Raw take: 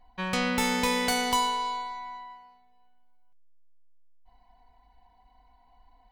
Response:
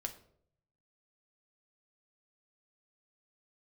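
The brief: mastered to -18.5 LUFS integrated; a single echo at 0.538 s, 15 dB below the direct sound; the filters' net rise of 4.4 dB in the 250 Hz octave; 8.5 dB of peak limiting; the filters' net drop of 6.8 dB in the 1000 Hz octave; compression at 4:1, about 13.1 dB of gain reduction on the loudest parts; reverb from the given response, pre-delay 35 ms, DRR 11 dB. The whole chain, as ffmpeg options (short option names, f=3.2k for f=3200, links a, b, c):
-filter_complex "[0:a]equalizer=f=250:t=o:g=5,equalizer=f=1k:t=o:g=-8,acompressor=threshold=-38dB:ratio=4,alimiter=level_in=8.5dB:limit=-24dB:level=0:latency=1,volume=-8.5dB,aecho=1:1:538:0.178,asplit=2[a][b];[1:a]atrim=start_sample=2205,adelay=35[c];[b][c]afir=irnorm=-1:irlink=0,volume=-10dB[d];[a][d]amix=inputs=2:normalize=0,volume=24dB"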